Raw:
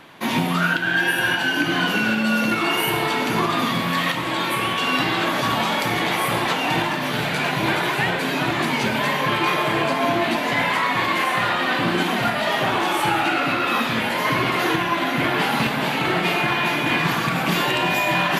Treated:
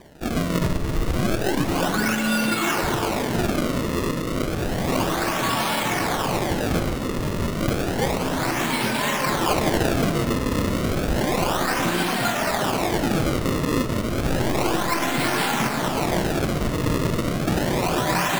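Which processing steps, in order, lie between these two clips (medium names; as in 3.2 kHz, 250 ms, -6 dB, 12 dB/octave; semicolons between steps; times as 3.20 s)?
9.50–10.09 s: treble shelf 2.7 kHz +10.5 dB; decimation with a swept rate 32×, swing 160% 0.31 Hz; reverberation RT60 3.5 s, pre-delay 10 ms, DRR 10 dB; trim -2 dB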